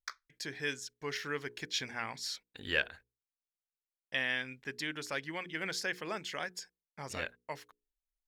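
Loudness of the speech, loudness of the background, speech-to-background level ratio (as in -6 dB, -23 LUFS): -37.5 LUFS, -47.5 LUFS, 10.0 dB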